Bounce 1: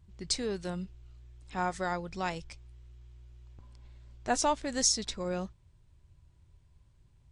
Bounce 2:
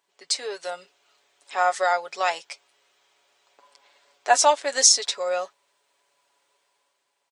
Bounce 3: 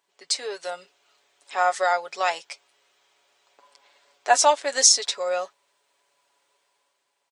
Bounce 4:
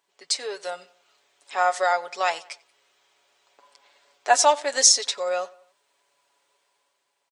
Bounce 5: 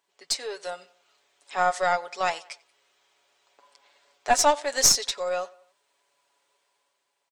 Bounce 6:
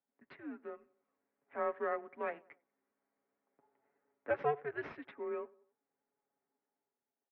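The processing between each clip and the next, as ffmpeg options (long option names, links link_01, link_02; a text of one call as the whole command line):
ffmpeg -i in.wav -af "highpass=frequency=500:width=0.5412,highpass=frequency=500:width=1.3066,aecho=1:1:7.1:0.63,dynaudnorm=framelen=100:gausssize=13:maxgain=6dB,volume=4dB" out.wav
ffmpeg -i in.wav -af anull out.wav
ffmpeg -i in.wav -filter_complex "[0:a]asplit=2[link_01][link_02];[link_02]adelay=92,lowpass=frequency=3600:poles=1,volume=-22dB,asplit=2[link_03][link_04];[link_04]adelay=92,lowpass=frequency=3600:poles=1,volume=0.47,asplit=2[link_05][link_06];[link_06]adelay=92,lowpass=frequency=3600:poles=1,volume=0.47[link_07];[link_01][link_03][link_05][link_07]amix=inputs=4:normalize=0" out.wav
ffmpeg -i in.wav -af "aeval=exprs='(tanh(2.24*val(0)+0.5)-tanh(0.5))/2.24':channel_layout=same" out.wav
ffmpeg -i in.wav -af "adynamicsmooth=sensitivity=5:basefreq=1400,highpass=frequency=310:width_type=q:width=0.5412,highpass=frequency=310:width_type=q:width=1.307,lowpass=frequency=2300:width_type=q:width=0.5176,lowpass=frequency=2300:width_type=q:width=0.7071,lowpass=frequency=2300:width_type=q:width=1.932,afreqshift=-150,equalizer=frequency=830:width_type=o:width=2.1:gain=-5,volume=-8.5dB" out.wav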